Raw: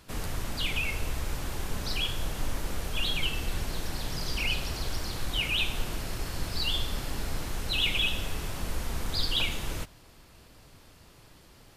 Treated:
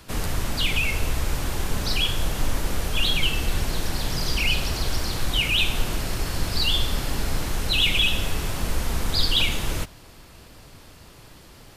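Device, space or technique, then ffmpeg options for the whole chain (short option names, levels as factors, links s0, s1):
one-band saturation: -filter_complex "[0:a]acrossover=split=290|2600[s0][s1][s2];[s1]asoftclip=type=tanh:threshold=0.0237[s3];[s0][s3][s2]amix=inputs=3:normalize=0,volume=2.37"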